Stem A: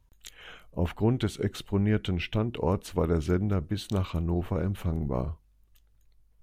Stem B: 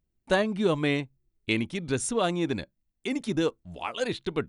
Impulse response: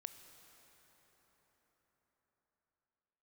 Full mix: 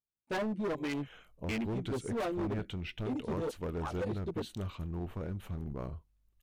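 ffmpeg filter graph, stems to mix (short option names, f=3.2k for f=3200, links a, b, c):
-filter_complex "[0:a]adelay=650,volume=-9dB[a];[1:a]highpass=f=120:p=1,afwtdn=0.0355,asplit=2[b][c];[c]adelay=11.8,afreqshift=-1.7[d];[b][d]amix=inputs=2:normalize=1,volume=-1dB[e];[a][e]amix=inputs=2:normalize=0,asoftclip=type=hard:threshold=-31dB"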